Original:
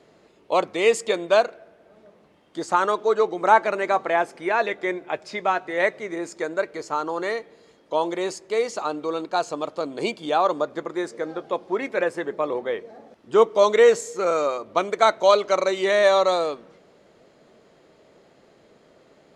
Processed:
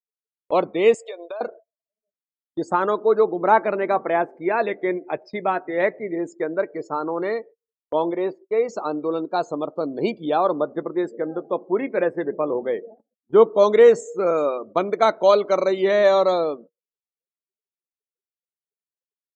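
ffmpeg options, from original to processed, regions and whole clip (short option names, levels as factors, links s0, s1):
-filter_complex "[0:a]asettb=1/sr,asplit=3[s0][s1][s2];[s0]atrim=end=0.944[s3];[s1]atrim=start=0.94:end=1.41,asetpts=PTS-STARTPTS,afade=t=in:d=0.004:c=qsin,afade=t=out:st=0.466:d=0.004:c=qsin,highpass=f=500:w=0.5412,highpass=f=500:w=1.3066,acompressor=threshold=0.0316:ratio=10:attack=3.2:release=140:knee=1:detection=peak[s4];[s2]atrim=start=1.406[s5];[s3][s4]acrossfade=d=0.004:c1=hsin:c2=qsin[s6];[s6][s5]acrossfade=d=0.004:c1=qsin:c2=hsin,asettb=1/sr,asplit=3[s7][s8][s9];[s7]atrim=end=8.114[s10];[s8]atrim=start=8.11:end=8.69,asetpts=PTS-STARTPTS,afade=t=in:d=0.004:c=qsin,afade=t=out:st=0.576:d=0.004:c=qsin,acrossover=split=3600[s11][s12];[s12]acompressor=threshold=0.00355:ratio=4:attack=1:release=60[s13];[s11][s13]amix=inputs=2:normalize=0,bass=f=250:g=-5,treble=f=4000:g=-2[s14];[s9]atrim=start=8.686[s15];[s10][s14]acrossfade=d=0.004:c1=hsin:c2=qsin[s16];[s16][s15]acrossfade=d=0.004:c1=qsin:c2=hsin,afftdn=nr=33:nf=-37,equalizer=f=180:w=0.3:g=10,agate=range=0.0251:threshold=0.0158:ratio=16:detection=peak,volume=0.631"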